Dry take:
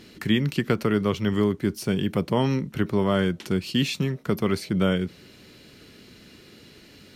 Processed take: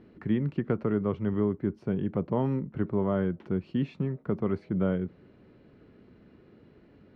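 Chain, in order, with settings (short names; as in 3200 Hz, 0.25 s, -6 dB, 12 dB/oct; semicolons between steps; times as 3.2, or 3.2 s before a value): LPF 1100 Hz 12 dB/oct; gain -4.5 dB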